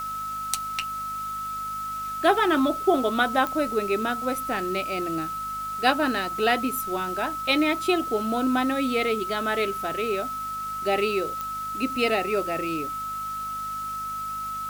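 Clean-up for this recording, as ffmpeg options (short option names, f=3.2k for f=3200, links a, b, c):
-af "adeclick=t=4,bandreject=f=51:t=h:w=4,bandreject=f=102:t=h:w=4,bandreject=f=153:t=h:w=4,bandreject=f=204:t=h:w=4,bandreject=f=255:t=h:w=4,bandreject=f=1.3k:w=30,afwtdn=0.005"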